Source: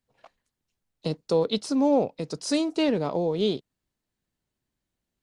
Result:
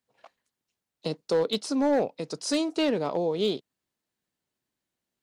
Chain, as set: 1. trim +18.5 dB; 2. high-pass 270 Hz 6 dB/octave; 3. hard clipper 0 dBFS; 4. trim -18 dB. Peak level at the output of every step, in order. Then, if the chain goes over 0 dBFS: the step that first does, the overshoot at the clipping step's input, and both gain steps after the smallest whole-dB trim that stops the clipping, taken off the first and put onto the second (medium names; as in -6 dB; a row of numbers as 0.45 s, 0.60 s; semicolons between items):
+7.0 dBFS, +4.5 dBFS, 0.0 dBFS, -18.0 dBFS; step 1, 4.5 dB; step 1 +13.5 dB, step 4 -13 dB